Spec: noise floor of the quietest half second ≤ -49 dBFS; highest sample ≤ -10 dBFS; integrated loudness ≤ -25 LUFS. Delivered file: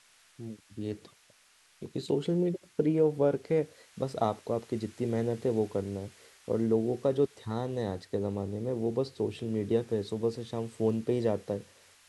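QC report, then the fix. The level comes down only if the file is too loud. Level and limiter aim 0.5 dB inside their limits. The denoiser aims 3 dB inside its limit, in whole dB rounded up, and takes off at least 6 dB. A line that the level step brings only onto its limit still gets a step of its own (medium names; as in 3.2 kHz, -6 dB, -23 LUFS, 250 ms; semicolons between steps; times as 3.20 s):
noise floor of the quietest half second -63 dBFS: pass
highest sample -14.0 dBFS: pass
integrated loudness -31.5 LUFS: pass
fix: none needed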